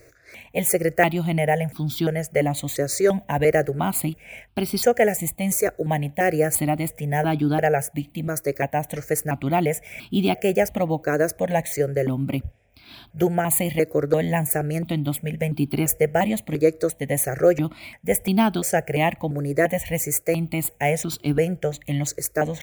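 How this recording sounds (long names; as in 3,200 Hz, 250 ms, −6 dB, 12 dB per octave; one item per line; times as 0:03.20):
notches that jump at a steady rate 2.9 Hz 850–1,900 Hz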